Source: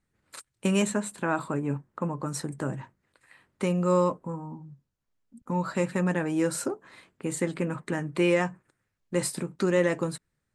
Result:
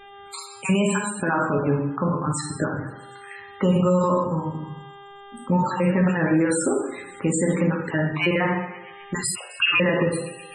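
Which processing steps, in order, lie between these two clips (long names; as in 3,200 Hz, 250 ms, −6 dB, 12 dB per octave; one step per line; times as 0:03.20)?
time-frequency cells dropped at random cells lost 29%
hum with harmonics 400 Hz, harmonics 9, −59 dBFS −6 dB per octave
convolution reverb RT60 0.75 s, pre-delay 5 ms, DRR −0.5 dB
brickwall limiter −19.5 dBFS, peak gain reduction 10 dB
low-shelf EQ 61 Hz +8.5 dB
0:09.35–0:09.80: voice inversion scrambler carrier 3,000 Hz
delay with a high-pass on its return 128 ms, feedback 70%, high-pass 2,100 Hz, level −18.5 dB
spectral peaks only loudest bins 64
one half of a high-frequency compander encoder only
level +7.5 dB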